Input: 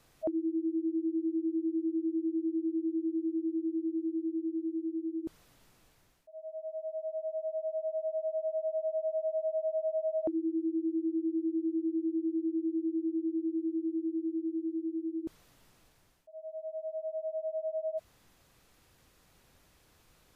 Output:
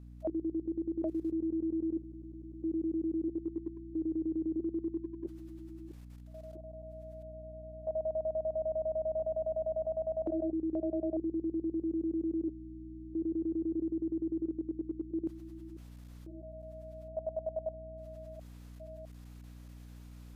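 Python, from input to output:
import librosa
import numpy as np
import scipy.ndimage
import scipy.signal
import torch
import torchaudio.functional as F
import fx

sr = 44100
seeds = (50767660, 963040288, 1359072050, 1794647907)

y = fx.reverse_delay(x, sr, ms=657, wet_db=-2.0)
y = fx.level_steps(y, sr, step_db=16)
y = fx.add_hum(y, sr, base_hz=60, snr_db=13)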